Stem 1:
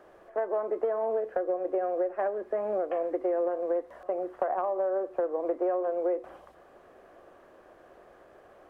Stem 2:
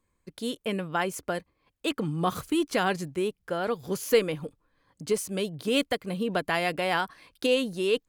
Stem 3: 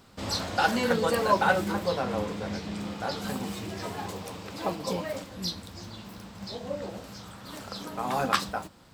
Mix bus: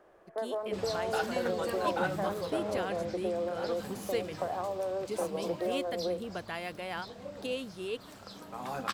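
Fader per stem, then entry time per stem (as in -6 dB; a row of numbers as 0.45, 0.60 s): -5.5, -11.5, -9.5 dB; 0.00, 0.00, 0.55 s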